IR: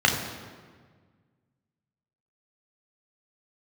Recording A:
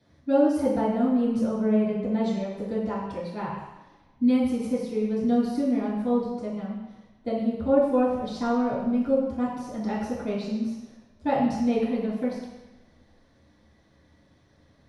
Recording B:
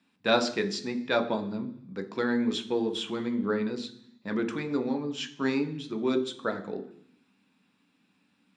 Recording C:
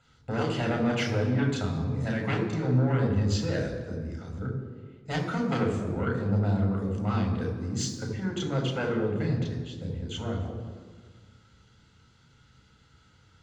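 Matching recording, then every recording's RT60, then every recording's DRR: C; non-exponential decay, 0.65 s, 1.6 s; −10.5, 6.5, 0.5 decibels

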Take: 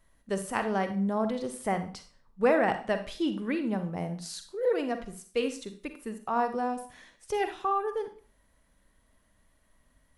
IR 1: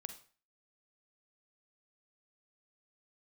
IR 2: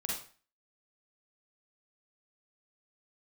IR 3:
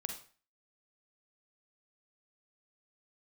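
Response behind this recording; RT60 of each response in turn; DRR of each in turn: 1; 0.40, 0.40, 0.40 seconds; 8.0, −3.5, 4.0 decibels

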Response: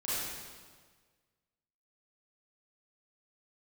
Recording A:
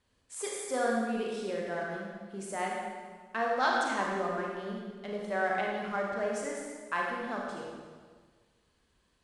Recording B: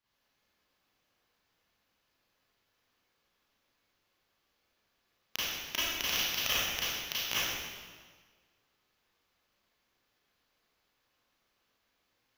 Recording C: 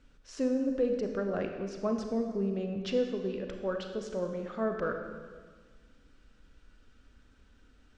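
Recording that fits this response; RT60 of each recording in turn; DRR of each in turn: B; 1.6, 1.6, 1.6 seconds; −2.5, −11.0, 4.5 decibels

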